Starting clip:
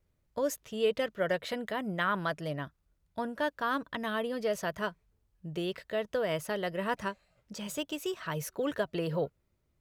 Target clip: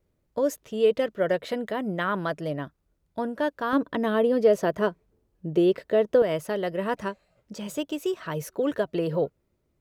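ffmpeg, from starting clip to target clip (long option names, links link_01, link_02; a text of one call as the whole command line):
ffmpeg -i in.wav -af "asetnsamples=nb_out_samples=441:pad=0,asendcmd='3.73 equalizer g 15;6.22 equalizer g 7.5',equalizer=frequency=360:width=0.58:gain=8" out.wav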